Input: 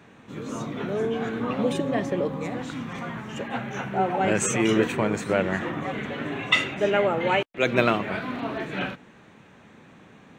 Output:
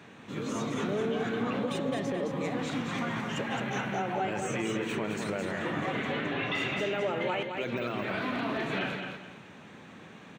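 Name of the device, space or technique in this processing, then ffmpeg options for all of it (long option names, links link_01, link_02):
broadcast voice chain: -filter_complex "[0:a]highpass=85,deesser=0.85,acompressor=threshold=-28dB:ratio=4,equalizer=frequency=3700:width_type=o:width=1.7:gain=3.5,alimiter=limit=-23.5dB:level=0:latency=1:release=31,asettb=1/sr,asplit=3[link_01][link_02][link_03];[link_01]atrim=end=6.124[link_04];[link_02]atrim=start=6.12:end=6.55,asetpts=PTS-STARTPTS,afade=type=in:duration=0.004:curve=qsin,afade=type=out:start_time=0.426:duration=0.004:curve=qsin,lowpass=frequency=5100:width=0.5412,lowpass=frequency=5100:width=1.3066[link_05];[link_03]atrim=start=6.546[link_06];[link_04][link_05]acrossfade=duration=0.004:curve1=hsin:curve2=qsin[link_07];[link_07][link_06]acrossfade=duration=0.004:curve1=qsin:curve2=hsin,aecho=1:1:215|430|645|860:0.531|0.149|0.0416|0.0117"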